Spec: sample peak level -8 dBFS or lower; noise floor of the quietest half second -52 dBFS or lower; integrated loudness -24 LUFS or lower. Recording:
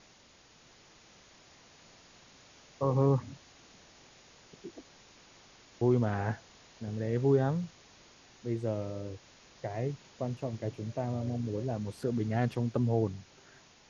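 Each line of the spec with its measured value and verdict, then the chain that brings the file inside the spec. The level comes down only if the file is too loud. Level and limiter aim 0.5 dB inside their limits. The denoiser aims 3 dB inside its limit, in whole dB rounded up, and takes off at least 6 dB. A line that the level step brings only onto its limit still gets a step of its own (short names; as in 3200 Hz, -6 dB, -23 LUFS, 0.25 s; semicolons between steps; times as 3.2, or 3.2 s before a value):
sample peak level -14.5 dBFS: OK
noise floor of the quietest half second -60 dBFS: OK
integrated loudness -32.5 LUFS: OK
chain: none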